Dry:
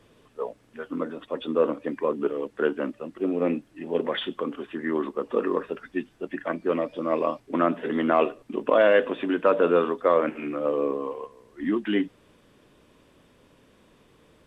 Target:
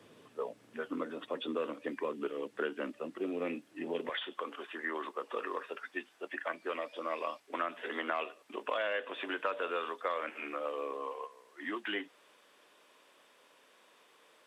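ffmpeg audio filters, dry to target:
-filter_complex "[0:a]asetnsamples=n=441:p=0,asendcmd='4.09 highpass f 690',highpass=150,acrossover=split=240|1800[s0][s1][s2];[s0]acompressor=threshold=0.00224:ratio=4[s3];[s1]acompressor=threshold=0.0158:ratio=4[s4];[s2]acompressor=threshold=0.0112:ratio=4[s5];[s3][s4][s5]amix=inputs=3:normalize=0"

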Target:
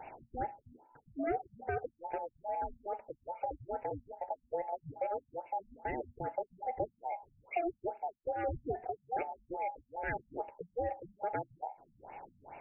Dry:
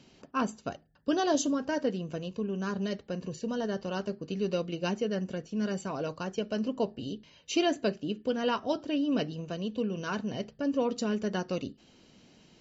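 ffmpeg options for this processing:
-af "afftfilt=real='real(if(between(b,1,1008),(2*floor((b-1)/48)+1)*48-b,b),0)':imag='imag(if(between(b,1,1008),(2*floor((b-1)/48)+1)*48-b,b),0)*if(between(b,1,1008),-1,1)':win_size=2048:overlap=0.75,acompressor=threshold=0.00316:ratio=2.5,afftfilt=real='re*lt(b*sr/1024,220*pow(2900/220,0.5+0.5*sin(2*PI*2.4*pts/sr)))':imag='im*lt(b*sr/1024,220*pow(2900/220,0.5+0.5*sin(2*PI*2.4*pts/sr)))':win_size=1024:overlap=0.75,volume=3.16"

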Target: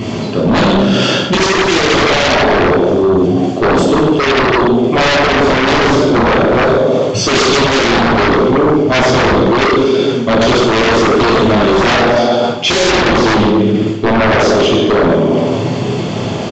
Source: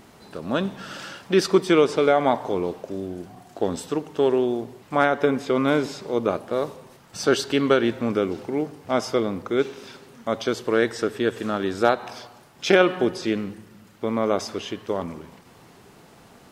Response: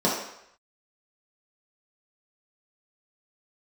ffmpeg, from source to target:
-filter_complex "[0:a]highshelf=f=4200:g=10,bandreject=f=48.84:t=h:w=4,bandreject=f=97.68:t=h:w=4,bandreject=f=146.52:t=h:w=4,bandreject=f=195.36:t=h:w=4,bandreject=f=244.2:t=h:w=4,bandreject=f=293.04:t=h:w=4[s0];[1:a]atrim=start_sample=2205,asetrate=26019,aresample=44100[s1];[s0][s1]afir=irnorm=-1:irlink=0,asplit=2[s2][s3];[s3]aeval=exprs='6.68*sin(PI/2*10*val(0)/6.68)':c=same,volume=0.422[s4];[s2][s4]amix=inputs=2:normalize=0,aresample=16000,aresample=44100,areverse,acompressor=threshold=0.794:ratio=6,areverse,volume=0.422"

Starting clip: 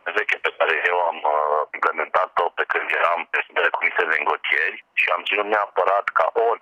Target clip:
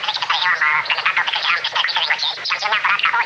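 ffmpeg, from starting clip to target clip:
-af "aeval=exprs='val(0)+0.5*0.0668*sgn(val(0))':c=same,aemphasis=mode=production:type=50kf,asetrate=89523,aresample=44100,highpass=f=110:w=0.5412,highpass=f=110:w=1.3066,equalizer=f=120:t=q:w=4:g=6,equalizer=f=260:t=q:w=4:g=-10,equalizer=f=600:t=q:w=4:g=5,equalizer=f=1900:t=q:w=4:g=5,lowpass=f=4100:w=0.5412,lowpass=f=4100:w=1.3066,bandreject=f=309.8:t=h:w=4,bandreject=f=619.6:t=h:w=4,bandreject=f=929.4:t=h:w=4,bandreject=f=1239.2:t=h:w=4,bandreject=f=1549:t=h:w=4,bandreject=f=1858.8:t=h:w=4,bandreject=f=2168.6:t=h:w=4,bandreject=f=2478.4:t=h:w=4,bandreject=f=2788.2:t=h:w=4,bandreject=f=3098:t=h:w=4,bandreject=f=3407.8:t=h:w=4,bandreject=f=3717.6:t=h:w=4,bandreject=f=4027.4:t=h:w=4,bandreject=f=4337.2:t=h:w=4,bandreject=f=4647:t=h:w=4,bandreject=f=4956.8:t=h:w=4,bandreject=f=5266.6:t=h:w=4,bandreject=f=5576.4:t=h:w=4,bandreject=f=5886.2:t=h:w=4,bandreject=f=6196:t=h:w=4,bandreject=f=6505.8:t=h:w=4,bandreject=f=6815.6:t=h:w=4,bandreject=f=7125.4:t=h:w=4,bandreject=f=7435.2:t=h:w=4,bandreject=f=7745:t=h:w=4,bandreject=f=8054.8:t=h:w=4,bandreject=f=8364.6:t=h:w=4,bandreject=f=8674.4:t=h:w=4,bandreject=f=8984.2:t=h:w=4,bandreject=f=9294:t=h:w=4,bandreject=f=9603.8:t=h:w=4,bandreject=f=9913.6:t=h:w=4,bandreject=f=10223.4:t=h:w=4" -ar 44100 -c:a libmp3lame -b:a 80k

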